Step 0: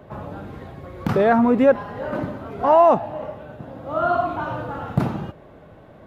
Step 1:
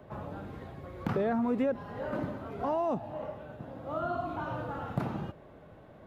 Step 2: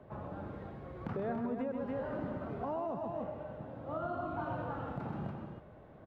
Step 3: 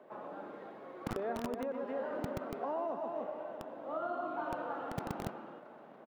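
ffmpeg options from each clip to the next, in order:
ffmpeg -i in.wav -filter_complex "[0:a]acrossover=split=400|3400[link_01][link_02][link_03];[link_01]acompressor=threshold=-22dB:ratio=4[link_04];[link_02]acompressor=threshold=-27dB:ratio=4[link_05];[link_03]acompressor=threshold=-54dB:ratio=4[link_06];[link_04][link_05][link_06]amix=inputs=3:normalize=0,volume=-7dB" out.wav
ffmpeg -i in.wav -af "lowpass=frequency=2000:poles=1,aecho=1:1:128.3|285.7:0.447|0.447,alimiter=level_in=1dB:limit=-24dB:level=0:latency=1:release=184,volume=-1dB,volume=-3dB" out.wav
ffmpeg -i in.wav -filter_complex "[0:a]acrossover=split=250[link_01][link_02];[link_01]acrusher=bits=5:mix=0:aa=0.000001[link_03];[link_02]aecho=1:1:654:0.237[link_04];[link_03][link_04]amix=inputs=2:normalize=0,volume=1dB" out.wav

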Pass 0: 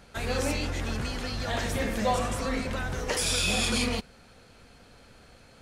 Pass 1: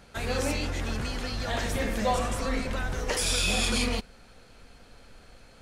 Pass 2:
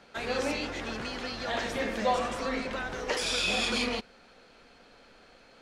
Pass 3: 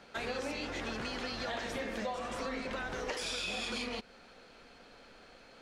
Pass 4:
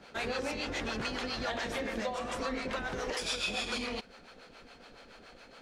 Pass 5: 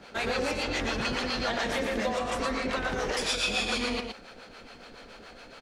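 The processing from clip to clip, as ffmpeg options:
ffmpeg -i in.wav -af "asubboost=boost=3:cutoff=51" out.wav
ffmpeg -i in.wav -filter_complex "[0:a]acrossover=split=200 6000:gain=0.178 1 0.2[link_01][link_02][link_03];[link_01][link_02][link_03]amix=inputs=3:normalize=0" out.wav
ffmpeg -i in.wav -af "acompressor=threshold=-34dB:ratio=10" out.wav
ffmpeg -i in.wav -filter_complex "[0:a]acrossover=split=490[link_01][link_02];[link_01]aeval=exprs='val(0)*(1-0.7/2+0.7/2*cos(2*PI*7.1*n/s))':channel_layout=same[link_03];[link_02]aeval=exprs='val(0)*(1-0.7/2-0.7/2*cos(2*PI*7.1*n/s))':channel_layout=same[link_04];[link_03][link_04]amix=inputs=2:normalize=0,volume=6dB" out.wav
ffmpeg -i in.wav -af "aecho=1:1:117:0.562,volume=4.5dB" out.wav

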